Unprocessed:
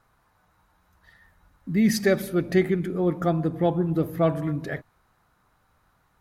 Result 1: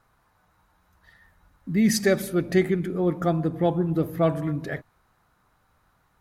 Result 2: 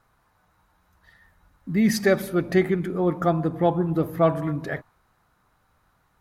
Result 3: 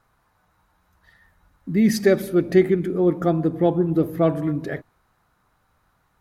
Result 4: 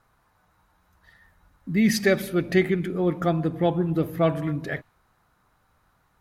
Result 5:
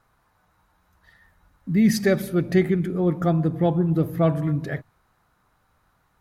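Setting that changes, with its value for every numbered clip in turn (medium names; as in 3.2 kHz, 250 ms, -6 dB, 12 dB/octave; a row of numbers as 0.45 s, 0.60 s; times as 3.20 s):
dynamic bell, frequency: 7.8 kHz, 1 kHz, 350 Hz, 2.7 kHz, 130 Hz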